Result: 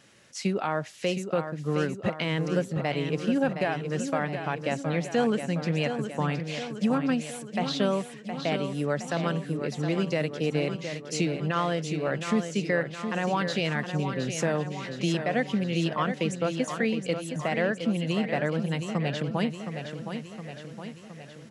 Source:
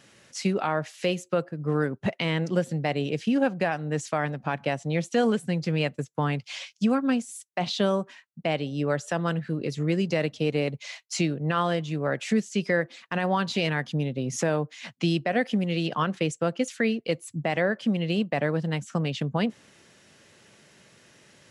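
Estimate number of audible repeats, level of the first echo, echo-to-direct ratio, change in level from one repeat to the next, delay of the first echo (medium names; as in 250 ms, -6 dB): 6, -8.0 dB, -6.0 dB, -4.5 dB, 716 ms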